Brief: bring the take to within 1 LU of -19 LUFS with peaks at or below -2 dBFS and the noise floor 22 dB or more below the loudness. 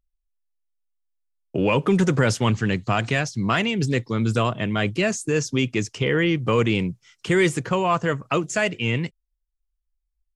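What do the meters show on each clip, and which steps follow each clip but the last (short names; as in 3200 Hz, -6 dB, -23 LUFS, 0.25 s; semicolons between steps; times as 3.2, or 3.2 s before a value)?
loudness -22.5 LUFS; peak -7.0 dBFS; loudness target -19.0 LUFS
-> gain +3.5 dB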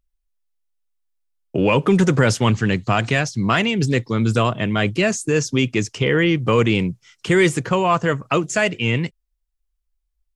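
loudness -19.0 LUFS; peak -3.5 dBFS; noise floor -74 dBFS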